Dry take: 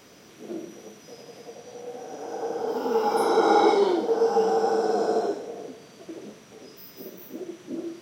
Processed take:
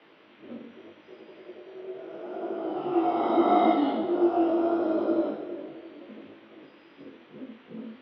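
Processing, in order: mistuned SSB -110 Hz 390–3500 Hz; on a send: two-band feedback delay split 600 Hz, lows 333 ms, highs 182 ms, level -14.5 dB; on the sum: chorus 0.78 Hz, delay 18 ms, depth 3.5 ms; trim +1.5 dB

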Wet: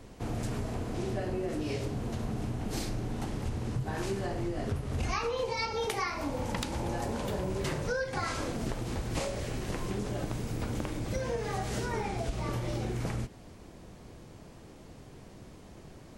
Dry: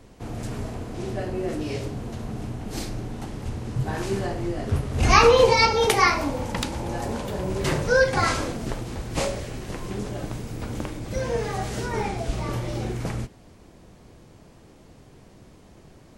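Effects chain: compression 12:1, threshold -29 dBFS, peak gain reduction 19.5 dB

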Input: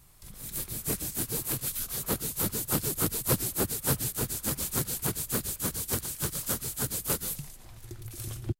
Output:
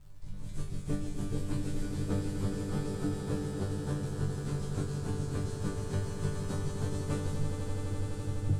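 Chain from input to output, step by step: low-pass 9 kHz 24 dB/octave; tilt EQ -3.5 dB/octave; gain riding within 4 dB; on a send: echo with a slow build-up 84 ms, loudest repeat 8, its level -10.5 dB; on the sum: crackle 120 per s -43 dBFS; chord resonator G2 fifth, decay 0.37 s; trim +4 dB

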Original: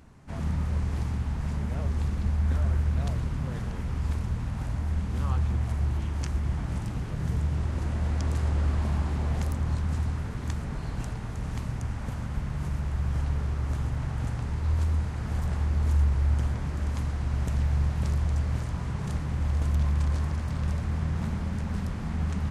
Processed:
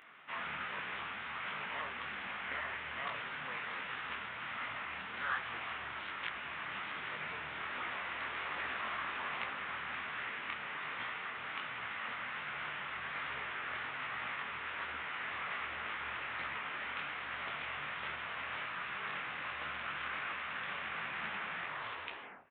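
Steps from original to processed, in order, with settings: tape stop on the ending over 1.12 s; high-pass 1.5 kHz 12 dB/octave; in parallel at -0.5 dB: gain riding within 4 dB; on the sum: formant shift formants +4 st; distance through air 460 m; echo from a far wall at 250 m, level -27 dB; on a send at -22 dB: reverberation RT60 1.8 s, pre-delay 3 ms; on the sum: resampled via 8 kHz; detune thickener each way 44 cents; trim +12.5 dB

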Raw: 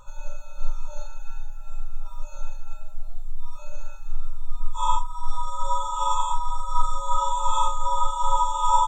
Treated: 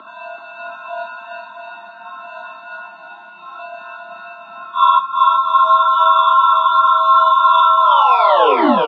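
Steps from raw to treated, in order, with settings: tape stop on the ending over 1.05 s; mistuned SSB +95 Hz 160–3400 Hz; dynamic bell 350 Hz, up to -8 dB, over -43 dBFS, Q 0.84; bouncing-ball echo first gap 380 ms, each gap 0.75×, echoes 5; loudness maximiser +18 dB; trim -1.5 dB; Vorbis 32 kbps 32 kHz

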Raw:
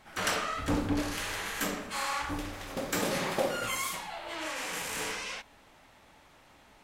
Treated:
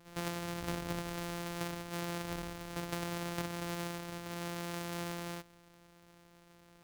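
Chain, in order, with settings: sorted samples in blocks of 256 samples; bass shelf 110 Hz -6 dB; compression, threshold -32 dBFS, peak gain reduction 8 dB; trim -2 dB

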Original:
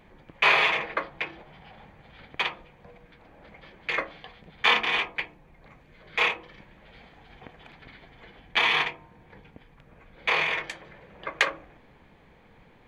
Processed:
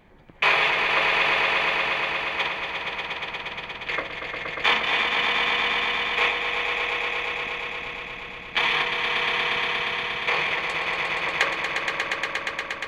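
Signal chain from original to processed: echo with a slow build-up 118 ms, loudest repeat 5, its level -5.5 dB

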